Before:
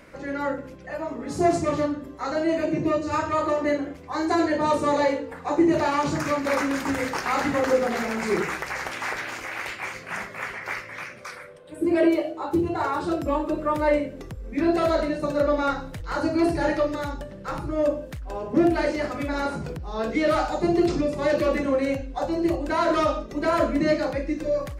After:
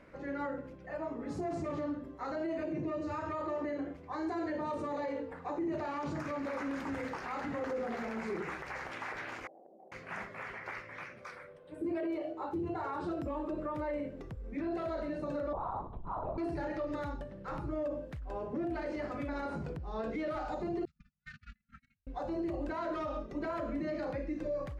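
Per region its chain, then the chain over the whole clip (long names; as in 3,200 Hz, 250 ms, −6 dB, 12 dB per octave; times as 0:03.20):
0:09.47–0:09.92: Chebyshev band-pass filter 160–760 Hz, order 5 + spectral tilt +2.5 dB per octave + downward compressor, threshold −45 dBFS
0:15.53–0:16.38: drawn EQ curve 200 Hz 0 dB, 350 Hz −16 dB, 770 Hz +6 dB, 1,100 Hz +9 dB, 1,700 Hz −24 dB, 8,100 Hz +3 dB + linear-prediction vocoder at 8 kHz whisper
0:20.85–0:22.07: noise gate −20 dBFS, range −47 dB + linear-phase brick-wall band-stop 230–1,200 Hz
whole clip: brickwall limiter −21.5 dBFS; low-pass filter 1,900 Hz 6 dB per octave; level −7 dB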